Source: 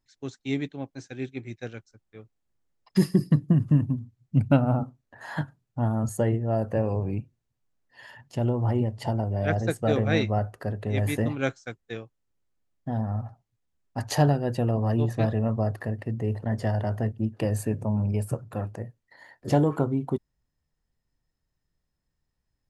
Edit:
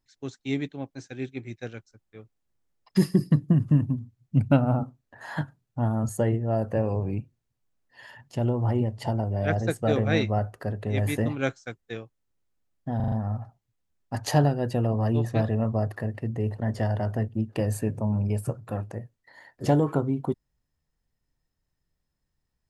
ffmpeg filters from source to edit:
ffmpeg -i in.wav -filter_complex "[0:a]asplit=5[link_01][link_02][link_03][link_04][link_05];[link_01]atrim=end=13.002[link_06];[link_02]atrim=start=12.958:end=13.002[link_07];[link_03]atrim=start=12.958:end=13.002[link_08];[link_04]atrim=start=12.958:end=13.002[link_09];[link_05]atrim=start=12.958[link_10];[link_06][link_07]acrossfade=duration=0.004:curve1=hsin:curve2=hsin[link_11];[link_11][link_08]acrossfade=duration=0.004:curve1=hsin:curve2=hsin[link_12];[link_12][link_09]acrossfade=duration=0.004:curve1=hsin:curve2=hsin[link_13];[link_13][link_10]acrossfade=duration=0.004:curve1=hsin:curve2=hsin" out.wav

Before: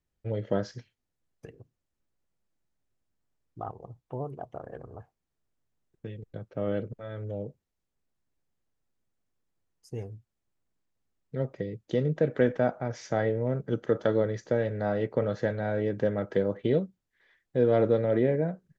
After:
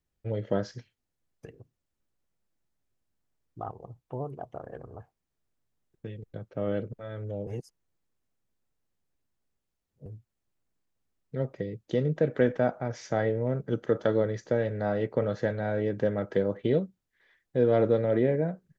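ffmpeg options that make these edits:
ffmpeg -i in.wav -filter_complex "[0:a]asplit=3[link_01][link_02][link_03];[link_01]atrim=end=7.472[link_04];[link_02]atrim=start=7.468:end=10.062,asetpts=PTS-STARTPTS,areverse[link_05];[link_03]atrim=start=10.058[link_06];[link_04][link_05]acrossfade=duration=0.004:curve1=hsin:curve2=hsin[link_07];[link_07][link_06]acrossfade=duration=0.004:curve1=hsin:curve2=hsin" out.wav

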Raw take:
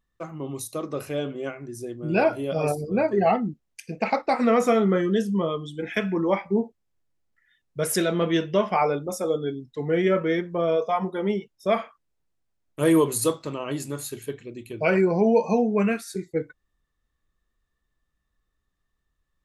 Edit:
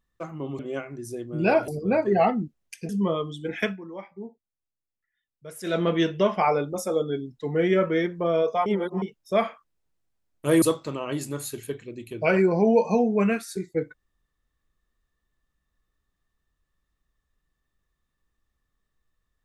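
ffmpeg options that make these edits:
ffmpeg -i in.wav -filter_complex "[0:a]asplit=9[link_01][link_02][link_03][link_04][link_05][link_06][link_07][link_08][link_09];[link_01]atrim=end=0.592[link_10];[link_02]atrim=start=1.288:end=2.382[link_11];[link_03]atrim=start=2.738:end=3.952[link_12];[link_04]atrim=start=5.228:end=6.11,asetpts=PTS-STARTPTS,afade=type=out:start_time=0.762:duration=0.12:silence=0.16788[link_13];[link_05]atrim=start=6.11:end=7.97,asetpts=PTS-STARTPTS,volume=-15.5dB[link_14];[link_06]atrim=start=7.97:end=11.002,asetpts=PTS-STARTPTS,afade=type=in:duration=0.12:silence=0.16788[link_15];[link_07]atrim=start=10.998:end=11.362,asetpts=PTS-STARTPTS,areverse[link_16];[link_08]atrim=start=11.358:end=12.962[link_17];[link_09]atrim=start=13.208[link_18];[link_10][link_11]acrossfade=duration=0.004:curve1=hsin:curve2=hsin[link_19];[link_19][link_12]acrossfade=duration=0.004:curve1=hsin:curve2=hsin[link_20];[link_13][link_14][link_15]concat=n=3:v=0:a=1[link_21];[link_20][link_21]acrossfade=duration=0.004:curve1=hsin:curve2=hsin[link_22];[link_22][link_16]acrossfade=duration=0.004:curve1=hsin:curve2=hsin[link_23];[link_23][link_17]acrossfade=duration=0.004:curve1=hsin:curve2=hsin[link_24];[link_24][link_18]acrossfade=duration=0.004:curve1=hsin:curve2=hsin" out.wav

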